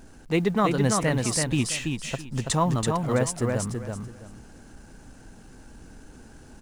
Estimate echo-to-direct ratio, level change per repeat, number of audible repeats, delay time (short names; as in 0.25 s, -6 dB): -4.0 dB, -13.0 dB, 3, 0.331 s